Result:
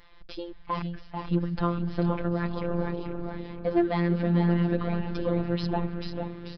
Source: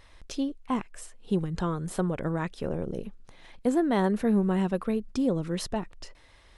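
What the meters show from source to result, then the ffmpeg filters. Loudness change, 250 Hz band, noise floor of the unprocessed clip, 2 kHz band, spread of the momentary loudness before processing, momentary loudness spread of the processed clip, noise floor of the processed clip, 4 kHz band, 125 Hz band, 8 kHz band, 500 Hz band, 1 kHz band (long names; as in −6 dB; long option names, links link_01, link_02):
+0.5 dB, 0.0 dB, −56 dBFS, +1.5 dB, 13 LU, 12 LU, −46 dBFS, 0.0 dB, +5.0 dB, below −20 dB, 0.0 dB, +1.0 dB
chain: -filter_complex "[0:a]equalizer=frequency=1200:width=1.5:gain=2.5,asoftclip=type=hard:threshold=-17dB,asplit=2[link_01][link_02];[link_02]aecho=0:1:466|932|1398|1864|2330|2796:0.282|0.147|0.0762|0.0396|0.0206|0.0107[link_03];[link_01][link_03]amix=inputs=2:normalize=0,aresample=11025,aresample=44100,asplit=2[link_04][link_05];[link_05]asplit=7[link_06][link_07][link_08][link_09][link_10][link_11][link_12];[link_06]adelay=439,afreqshift=-130,volume=-5.5dB[link_13];[link_07]adelay=878,afreqshift=-260,volume=-11dB[link_14];[link_08]adelay=1317,afreqshift=-390,volume=-16.5dB[link_15];[link_09]adelay=1756,afreqshift=-520,volume=-22dB[link_16];[link_10]adelay=2195,afreqshift=-650,volume=-27.6dB[link_17];[link_11]adelay=2634,afreqshift=-780,volume=-33.1dB[link_18];[link_12]adelay=3073,afreqshift=-910,volume=-38.6dB[link_19];[link_13][link_14][link_15][link_16][link_17][link_18][link_19]amix=inputs=7:normalize=0[link_20];[link_04][link_20]amix=inputs=2:normalize=0,afftfilt=real='hypot(re,im)*cos(PI*b)':imag='0':win_size=1024:overlap=0.75,volume=2.5dB"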